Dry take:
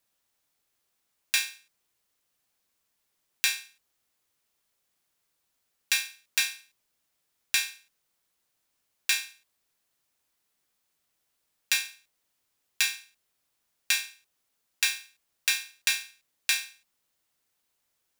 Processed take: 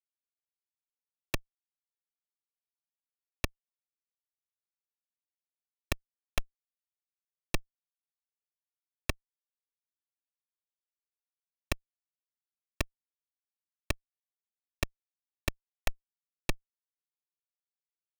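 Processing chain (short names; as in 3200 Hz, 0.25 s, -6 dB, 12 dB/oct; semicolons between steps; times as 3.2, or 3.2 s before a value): treble ducked by the level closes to 1900 Hz, closed at -26 dBFS; Schmitt trigger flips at -20.5 dBFS; gain +17.5 dB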